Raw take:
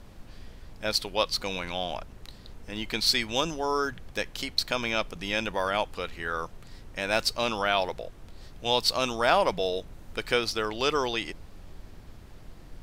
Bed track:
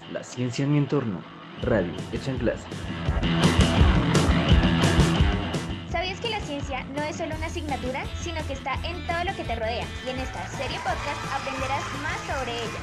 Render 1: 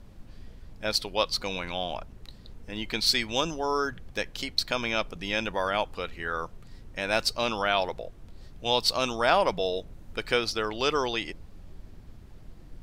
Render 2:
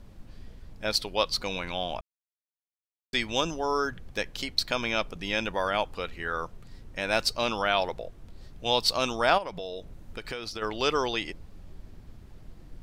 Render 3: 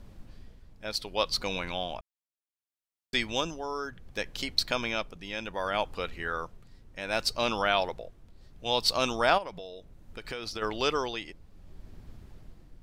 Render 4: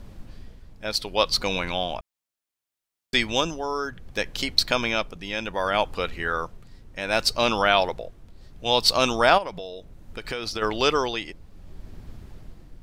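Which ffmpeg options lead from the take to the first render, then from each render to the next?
-af "afftdn=nr=6:nf=-48"
-filter_complex "[0:a]asplit=3[a][b][c];[a]afade=t=out:st=9.37:d=0.02[d];[b]acompressor=threshold=-33dB:ratio=4:attack=3.2:release=140:knee=1:detection=peak,afade=t=in:st=9.37:d=0.02,afade=t=out:st=10.61:d=0.02[e];[c]afade=t=in:st=10.61:d=0.02[f];[d][e][f]amix=inputs=3:normalize=0,asplit=3[g][h][i];[g]atrim=end=2.01,asetpts=PTS-STARTPTS,afade=t=out:st=2.006:d=0.004:c=hsin[j];[h]atrim=start=2.01:end=3.13,asetpts=PTS-STARTPTS,volume=0[k];[i]atrim=start=3.13,asetpts=PTS-STARTPTS,afade=t=in:d=0.004:c=hsin[l];[j][k][l]concat=n=3:v=0:a=1"
-af "tremolo=f=0.66:d=0.59"
-af "volume=6.5dB,alimiter=limit=-2dB:level=0:latency=1"

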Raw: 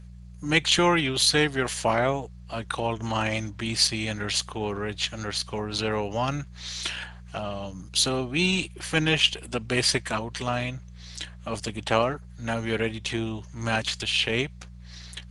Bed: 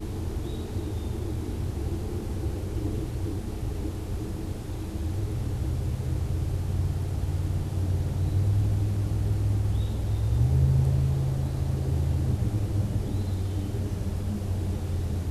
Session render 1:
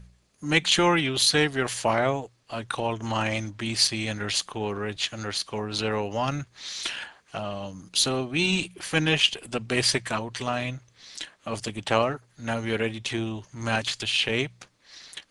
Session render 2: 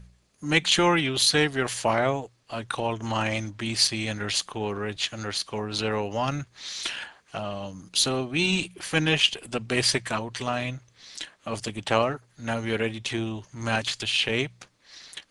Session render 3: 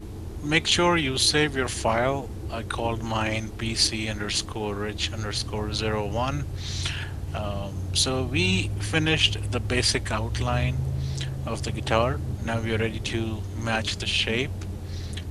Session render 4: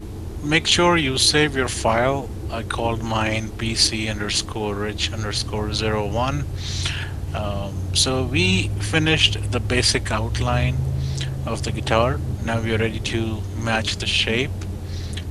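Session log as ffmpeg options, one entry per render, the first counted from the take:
-af "bandreject=f=60:t=h:w=4,bandreject=f=120:t=h:w=4,bandreject=f=180:t=h:w=4"
-af anull
-filter_complex "[1:a]volume=-4.5dB[a];[0:a][a]amix=inputs=2:normalize=0"
-af "volume=4.5dB,alimiter=limit=-2dB:level=0:latency=1"

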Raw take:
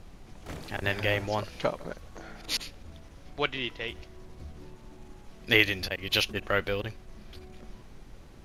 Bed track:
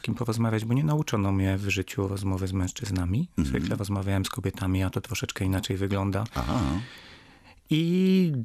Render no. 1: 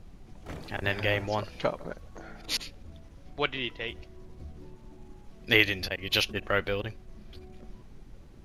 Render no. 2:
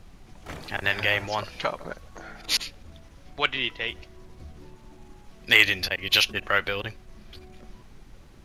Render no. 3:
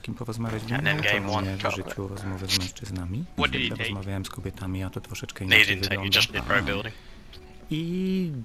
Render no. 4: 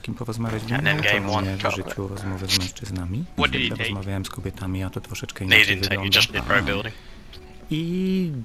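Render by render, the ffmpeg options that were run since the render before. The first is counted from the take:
-af "afftdn=nr=6:nf=-50"
-filter_complex "[0:a]acrossover=split=780[a][b];[a]alimiter=level_in=3dB:limit=-24dB:level=0:latency=1,volume=-3dB[c];[b]acontrast=69[d];[c][d]amix=inputs=2:normalize=0"
-filter_complex "[1:a]volume=-5dB[a];[0:a][a]amix=inputs=2:normalize=0"
-af "volume=3.5dB,alimiter=limit=-1dB:level=0:latency=1"

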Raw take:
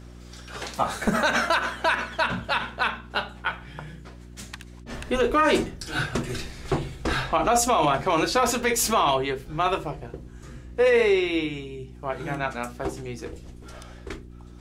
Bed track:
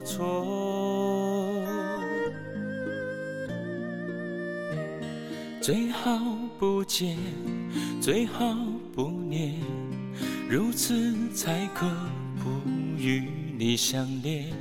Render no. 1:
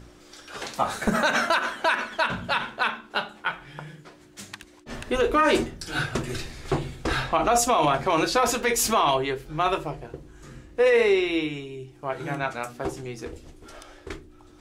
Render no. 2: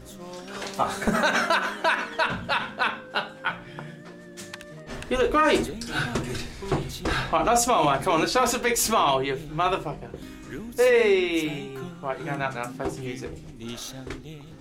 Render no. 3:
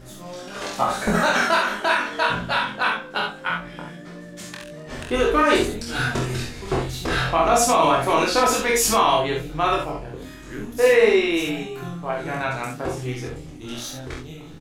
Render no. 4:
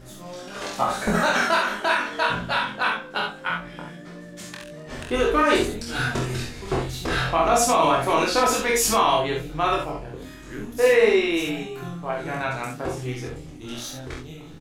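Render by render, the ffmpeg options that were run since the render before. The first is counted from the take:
-af "bandreject=f=60:t=h:w=4,bandreject=f=120:t=h:w=4,bandreject=f=180:t=h:w=4,bandreject=f=240:t=h:w=4"
-filter_complex "[1:a]volume=-11dB[a];[0:a][a]amix=inputs=2:normalize=0"
-filter_complex "[0:a]asplit=2[a][b];[b]adelay=24,volume=-2.5dB[c];[a][c]amix=inputs=2:normalize=0,aecho=1:1:47|64:0.531|0.473"
-af "volume=-1.5dB"

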